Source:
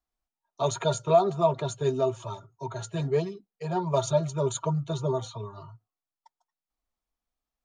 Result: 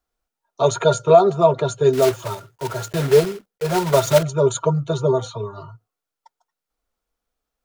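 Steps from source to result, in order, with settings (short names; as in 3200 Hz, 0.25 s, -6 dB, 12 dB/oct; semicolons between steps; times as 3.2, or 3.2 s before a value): 1.93–4.23 block floating point 3-bit; small resonant body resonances 470/1400 Hz, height 8 dB, ringing for 20 ms; gain +6.5 dB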